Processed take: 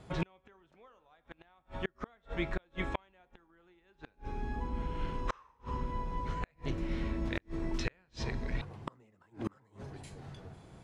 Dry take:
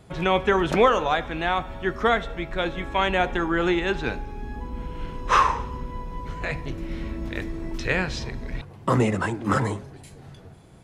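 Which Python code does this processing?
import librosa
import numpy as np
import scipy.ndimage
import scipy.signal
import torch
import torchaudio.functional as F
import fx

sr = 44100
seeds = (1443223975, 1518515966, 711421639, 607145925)

y = scipy.signal.sosfilt(scipy.signal.butter(2, 8600.0, 'lowpass', fs=sr, output='sos'), x)
y = fx.peak_eq(y, sr, hz=1000.0, db=2.0, octaves=1.2)
y = fx.gate_flip(y, sr, shuts_db=-17.0, range_db=-39)
y = F.gain(torch.from_numpy(y), -3.5).numpy()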